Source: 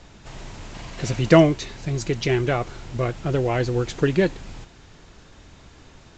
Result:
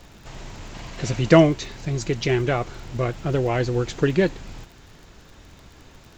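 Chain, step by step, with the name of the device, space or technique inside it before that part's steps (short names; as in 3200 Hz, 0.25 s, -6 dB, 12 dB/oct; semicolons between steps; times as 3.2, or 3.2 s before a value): vinyl LP (crackle 36/s -38 dBFS; pink noise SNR 42 dB)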